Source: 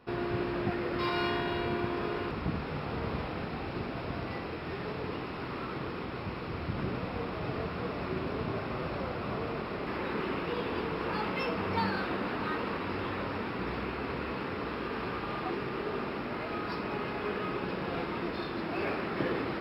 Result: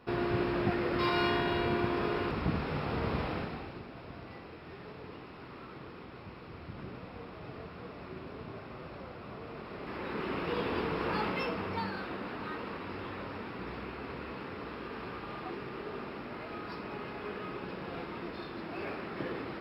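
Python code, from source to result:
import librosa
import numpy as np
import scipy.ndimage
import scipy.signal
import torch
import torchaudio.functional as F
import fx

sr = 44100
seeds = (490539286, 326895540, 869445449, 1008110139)

y = fx.gain(x, sr, db=fx.line((3.34, 1.5), (3.83, -10.0), (9.4, -10.0), (10.57, 0.5), (11.23, 0.5), (11.87, -6.0)))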